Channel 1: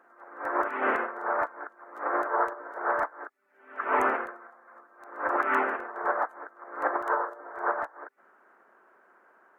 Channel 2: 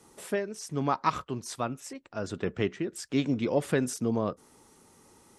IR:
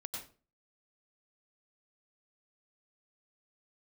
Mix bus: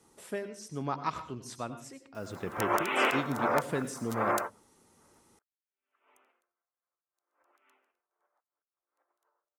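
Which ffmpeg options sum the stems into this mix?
-filter_complex "[0:a]aexciter=amount=12.5:drive=6.3:freq=2.6k,adelay=2150,volume=-1dB,afade=t=out:st=7.63:d=0.46:silence=0.398107[a];[1:a]volume=-9dB,asplit=3[b][c][d];[c]volume=-4dB[e];[d]apad=whole_len=521870[f];[a][f]sidechaingate=range=-43dB:threshold=-56dB:ratio=16:detection=peak[g];[2:a]atrim=start_sample=2205[h];[e][h]afir=irnorm=-1:irlink=0[i];[g][b][i]amix=inputs=3:normalize=0"

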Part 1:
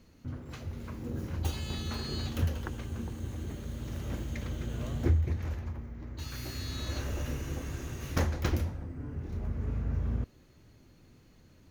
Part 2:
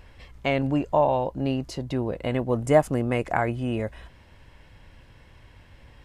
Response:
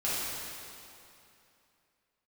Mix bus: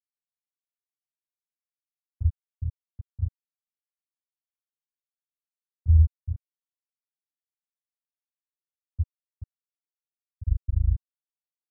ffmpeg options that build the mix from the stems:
-filter_complex "[0:a]equalizer=f=1.3k:w=0.37:g=8,dynaudnorm=f=460:g=3:m=13dB,adelay=800,volume=-8dB,asplit=2[a][b];[b]volume=-6.5dB[c];[1:a]asubboost=boost=4:cutoff=200,alimiter=limit=-15.5dB:level=0:latency=1,volume=0dB,asplit=2[d][e];[e]volume=-21dB[f];[2:a]atrim=start_sample=2205[g];[c][f]amix=inputs=2:normalize=0[h];[h][g]afir=irnorm=-1:irlink=0[i];[a][d][i]amix=inputs=3:normalize=0,afftfilt=real='re*gte(hypot(re,im),1.41)':imag='im*gte(hypot(re,im),1.41)':win_size=1024:overlap=0.75,highshelf=f=1.9k:t=q:w=1.5:g=-12.5"

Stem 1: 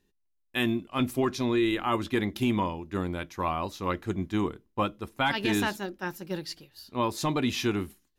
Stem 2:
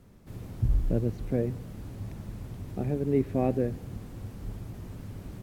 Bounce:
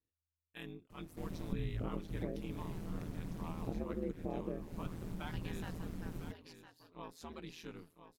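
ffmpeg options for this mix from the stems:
-filter_complex "[0:a]volume=-18.5dB,asplit=2[a][b];[b]volume=-10.5dB[c];[1:a]acompressor=threshold=-34dB:ratio=6,adelay=900,volume=0.5dB[d];[c]aecho=0:1:1008|2016|3024|4032|5040:1|0.35|0.122|0.0429|0.015[e];[a][d][e]amix=inputs=3:normalize=0,aeval=exprs='val(0)*sin(2*PI*82*n/s)':c=same"

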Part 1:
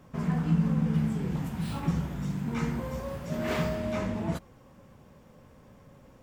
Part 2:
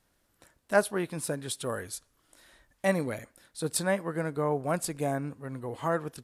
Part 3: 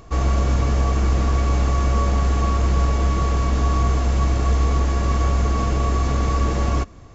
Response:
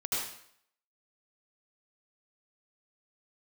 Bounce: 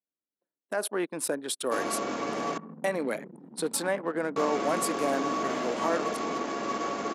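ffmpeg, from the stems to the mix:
-filter_complex "[0:a]acompressor=threshold=-30dB:ratio=4,adelay=2000,volume=-7.5dB,asplit=2[a][b];[b]volume=-9.5dB[c];[1:a]alimiter=limit=-22.5dB:level=0:latency=1:release=51,volume=0.5dB[d];[2:a]aeval=exprs='sgn(val(0))*max(abs(val(0))-0.00668,0)':c=same,adelay=1600,volume=-8dB,asplit=3[e][f][g];[e]atrim=end=2.58,asetpts=PTS-STARTPTS,afade=t=out:st=2.576:d=0.004:c=hsin[h];[f]atrim=start=2.58:end=4.36,asetpts=PTS-STARTPTS,volume=0[i];[g]atrim=start=4.36,asetpts=PTS-STARTPTS,afade=t=in:d=0.004:c=hsin[j];[h][i][j]concat=n=3:v=0:a=1,asplit=2[k][l];[l]volume=-19dB[m];[3:a]atrim=start_sample=2205[n];[m][n]afir=irnorm=-1:irlink=0[o];[c]aecho=0:1:175|350|525|700|875|1050|1225|1400|1575:1|0.57|0.325|0.185|0.106|0.0602|0.0343|0.0195|0.0111[p];[a][d][k][o][p]amix=inputs=5:normalize=0,anlmdn=0.398,highpass=f=250:w=0.5412,highpass=f=250:w=1.3066,dynaudnorm=f=210:g=7:m=4dB"

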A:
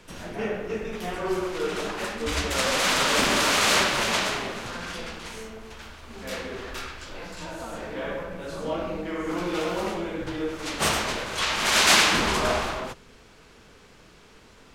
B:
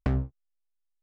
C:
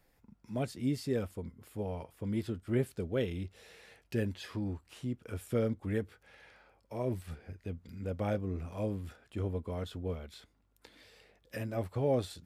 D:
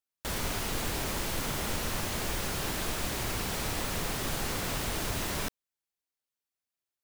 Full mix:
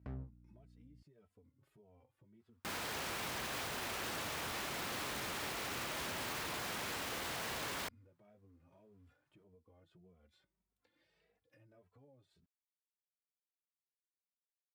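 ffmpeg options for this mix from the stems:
-filter_complex "[1:a]alimiter=level_in=0.5dB:limit=-24dB:level=0:latency=1:release=51,volume=-0.5dB,aeval=exprs='val(0)+0.00447*(sin(2*PI*60*n/s)+sin(2*PI*2*60*n/s)/2+sin(2*PI*3*60*n/s)/3+sin(2*PI*4*60*n/s)/4+sin(2*PI*5*60*n/s)/5)':c=same,volume=-13dB[a];[2:a]acompressor=threshold=-40dB:ratio=6,asplit=2[b][c];[c]adelay=2.7,afreqshift=1.7[d];[b][d]amix=inputs=2:normalize=1,volume=-7dB[e];[3:a]equalizer=f=1.1k:w=1.1:g=13.5,aeval=exprs='(mod(22.4*val(0)+1,2)-1)/22.4':c=same,adelay=2400,volume=1.5dB[f];[e]flanger=delay=5.2:depth=3.3:regen=43:speed=0.19:shape=triangular,alimiter=level_in=32.5dB:limit=-24dB:level=0:latency=1:release=349,volume=-32.5dB,volume=0dB[g];[a][f][g]amix=inputs=3:normalize=0,highpass=56,highshelf=f=4.3k:g=-12,alimiter=level_in=10dB:limit=-24dB:level=0:latency=1,volume=-10dB"

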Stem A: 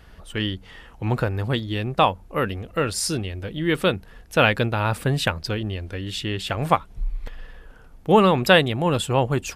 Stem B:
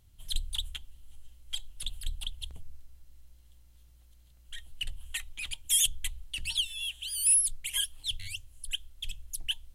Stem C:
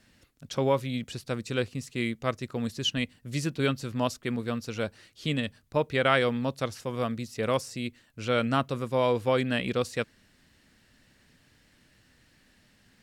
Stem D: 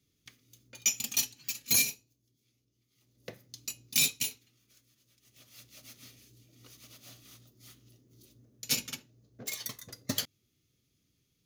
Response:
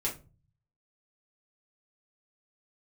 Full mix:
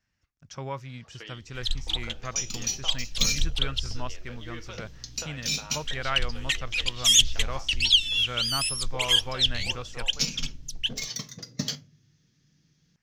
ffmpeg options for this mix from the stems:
-filter_complex "[0:a]highpass=540,acompressor=threshold=-32dB:ratio=6,adelay=850,volume=-12.5dB,asplit=2[a][b];[b]volume=-7.5dB[c];[1:a]dynaudnorm=f=120:g=21:m=6.5dB,adelay=1350,volume=2.5dB[d];[2:a]agate=range=-10dB:threshold=-57dB:ratio=16:detection=peak,equalizer=f=250:t=o:w=1:g=-9,equalizer=f=500:t=o:w=1:g=-9,equalizer=f=4k:t=o:w=1:g=-12,volume=-3dB,asplit=2[e][f];[3:a]equalizer=f=160:t=o:w=1:g=11.5,alimiter=limit=-17dB:level=0:latency=1:release=329,adelay=1500,volume=0.5dB,asplit=2[g][h];[h]volume=-11.5dB[i];[f]apad=whole_len=571500[j];[g][j]sidechaincompress=threshold=-43dB:ratio=8:attack=16:release=273[k];[4:a]atrim=start_sample=2205[l];[c][i]amix=inputs=2:normalize=0[m];[m][l]afir=irnorm=-1:irlink=0[n];[a][d][e][k][n]amix=inputs=5:normalize=0,highshelf=f=7.6k:t=q:w=3:g=-11.5"

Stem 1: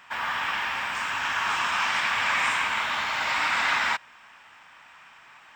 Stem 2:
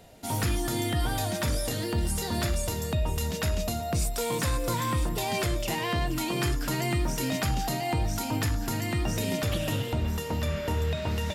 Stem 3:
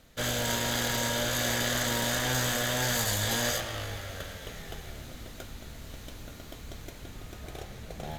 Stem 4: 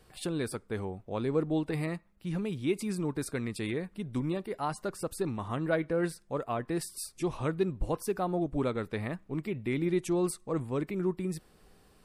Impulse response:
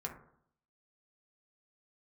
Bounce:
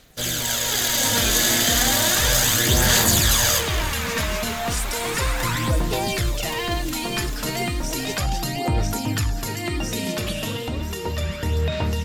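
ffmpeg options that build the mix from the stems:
-filter_complex "[0:a]adelay=1750,volume=-7dB[a];[1:a]equalizer=f=4.7k:t=o:w=2.5:g=4.5,adelay=750,volume=1dB[b];[2:a]highshelf=f=2.4k:g=11,dynaudnorm=f=140:g=11:m=4.5dB,volume=-2dB[c];[3:a]volume=-7dB[d];[a][b][c][d]amix=inputs=4:normalize=0,aphaser=in_gain=1:out_gain=1:delay=4.7:decay=0.44:speed=0.34:type=sinusoidal"

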